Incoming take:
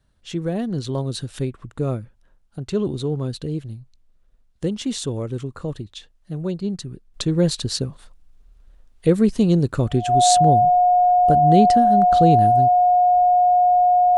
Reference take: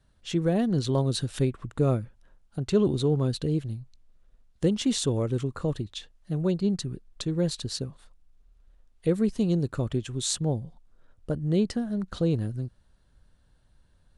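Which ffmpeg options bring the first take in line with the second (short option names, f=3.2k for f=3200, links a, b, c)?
-af "bandreject=f=720:w=30,asetnsamples=n=441:p=0,asendcmd='7.14 volume volume -8dB',volume=0dB"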